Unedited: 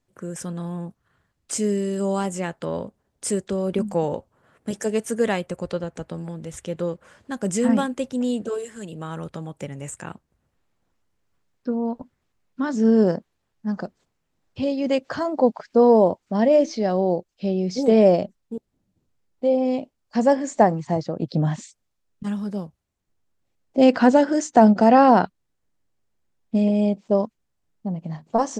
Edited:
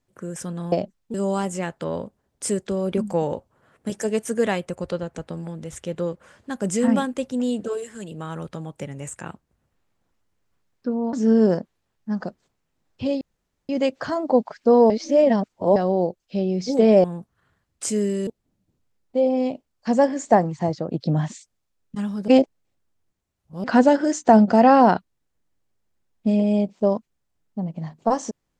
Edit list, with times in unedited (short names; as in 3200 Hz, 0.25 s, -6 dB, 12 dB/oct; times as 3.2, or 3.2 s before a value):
0.72–1.95 swap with 18.13–18.55
11.94–12.7 cut
14.78 insert room tone 0.48 s
15.99–16.85 reverse
22.56–23.92 reverse